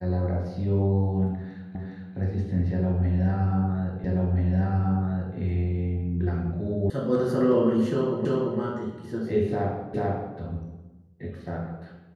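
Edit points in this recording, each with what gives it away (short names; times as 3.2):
1.75 repeat of the last 0.41 s
4.04 repeat of the last 1.33 s
6.9 sound cut off
8.25 repeat of the last 0.34 s
9.94 repeat of the last 0.44 s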